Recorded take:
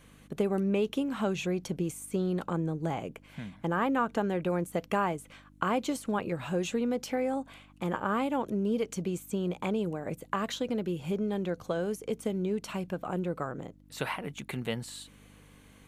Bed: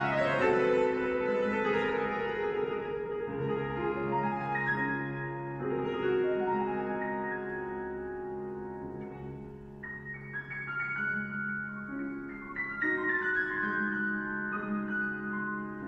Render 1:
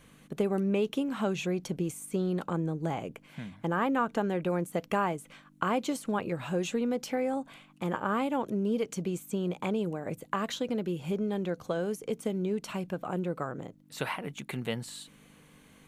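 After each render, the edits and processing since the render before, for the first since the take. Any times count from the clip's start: de-hum 50 Hz, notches 2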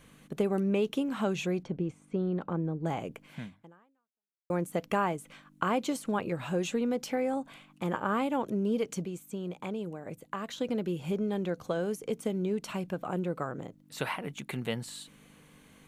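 1.63–2.86 s: tape spacing loss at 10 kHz 28 dB; 3.44–4.50 s: fade out exponential; 9.05–10.58 s: gain -5.5 dB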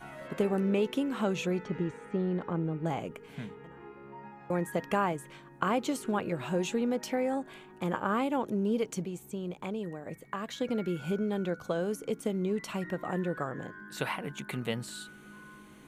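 add bed -16.5 dB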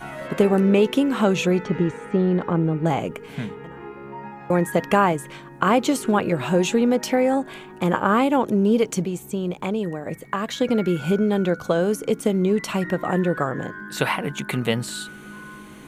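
trim +11 dB; peak limiter -3 dBFS, peak gain reduction 2.5 dB

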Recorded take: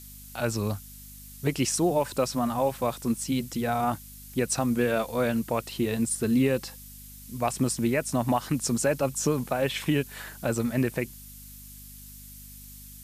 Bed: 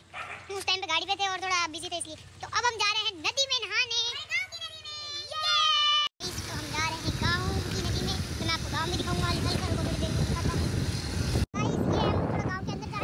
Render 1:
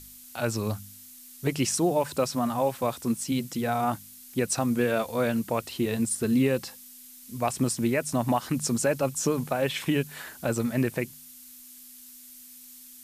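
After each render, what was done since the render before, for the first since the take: de-hum 50 Hz, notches 4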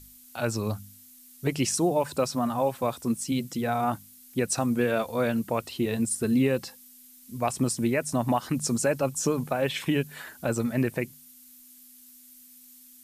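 noise reduction 6 dB, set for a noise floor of -48 dBFS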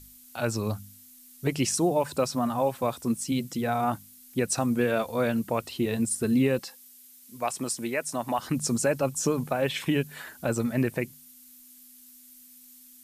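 6.59–8.39 s: high-pass 530 Hz 6 dB/octave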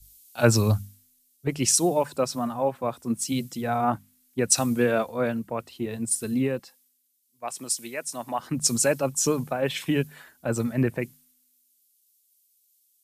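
gain riding 2 s; three bands expanded up and down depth 100%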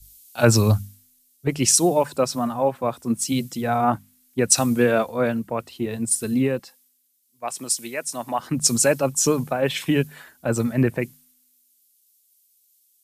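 trim +4 dB; peak limiter -2 dBFS, peak gain reduction 2.5 dB

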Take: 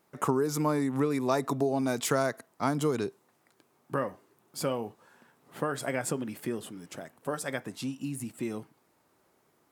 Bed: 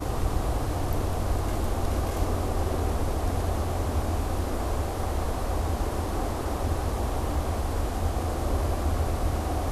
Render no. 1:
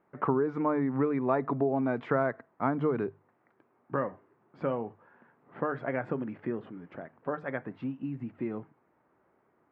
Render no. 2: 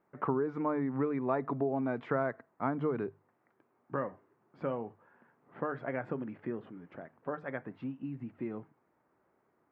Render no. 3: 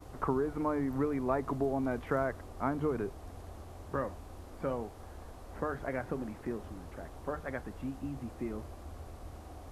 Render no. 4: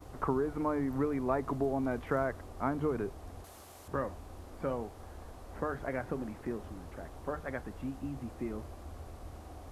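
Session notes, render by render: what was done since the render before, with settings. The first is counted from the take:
low-pass 2 kHz 24 dB/octave; hum notches 50/100/150 Hz
trim -4 dB
add bed -20 dB
3.44–3.88 s: tilt EQ +3 dB/octave

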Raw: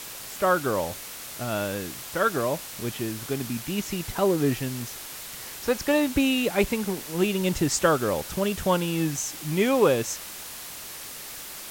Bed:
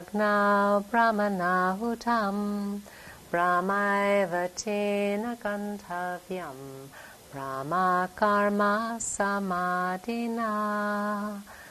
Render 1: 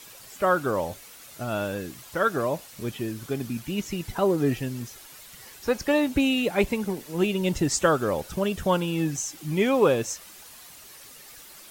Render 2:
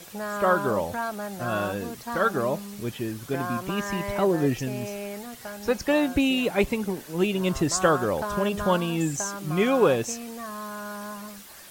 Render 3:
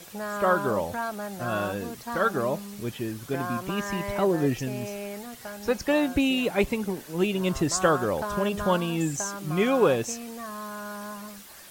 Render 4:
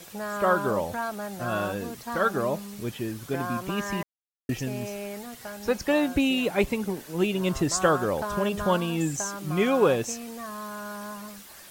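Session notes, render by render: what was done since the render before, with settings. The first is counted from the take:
noise reduction 10 dB, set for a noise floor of -39 dBFS
add bed -7.5 dB
trim -1 dB
4.03–4.49 s: mute

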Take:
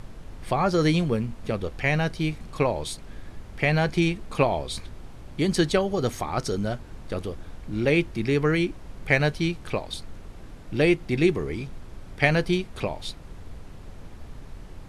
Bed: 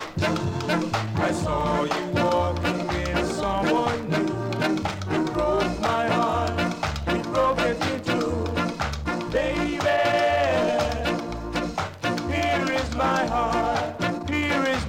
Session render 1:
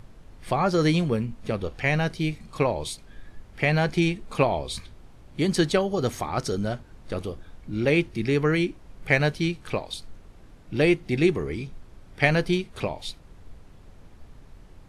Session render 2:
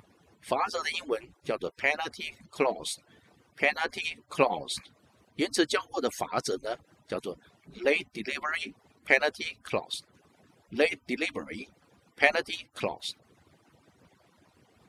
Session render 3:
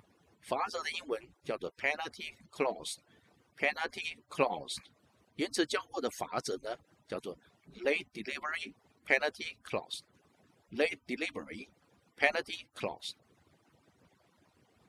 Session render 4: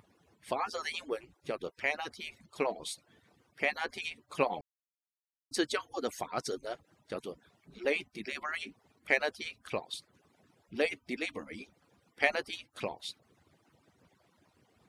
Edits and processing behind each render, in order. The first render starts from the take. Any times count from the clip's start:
noise print and reduce 7 dB
harmonic-percussive separation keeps percussive; high-pass 300 Hz 6 dB/octave
trim -5.5 dB
4.61–5.51 s: mute

